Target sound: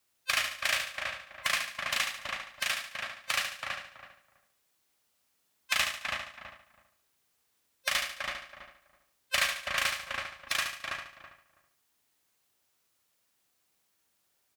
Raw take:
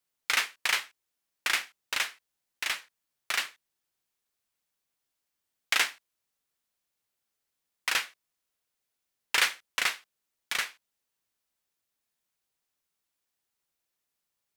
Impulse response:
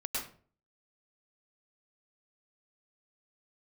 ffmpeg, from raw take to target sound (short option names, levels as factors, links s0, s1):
-filter_complex "[0:a]afftfilt=real='real(if(between(b,1,1008),(2*floor((b-1)/24)+1)*24-b,b),0)':imag='imag(if(between(b,1,1008),(2*floor((b-1)/24)+1)*24-b,b),0)*if(between(b,1,1008),-1,1)':win_size=2048:overlap=0.75,highpass=40,asplit=2[s0][s1];[s1]adelay=327,lowpass=f=1400:p=1,volume=0.501,asplit=2[s2][s3];[s3]adelay=327,lowpass=f=1400:p=1,volume=0.19,asplit=2[s4][s5];[s5]adelay=327,lowpass=f=1400:p=1,volume=0.19[s6];[s2][s4][s6]amix=inputs=3:normalize=0[s7];[s0][s7]amix=inputs=2:normalize=0,acompressor=threshold=0.00708:ratio=2,asplit=2[s8][s9];[s9]aecho=0:1:72|144|216|288|360:0.473|0.194|0.0795|0.0326|0.0134[s10];[s8][s10]amix=inputs=2:normalize=0,volume=2.51"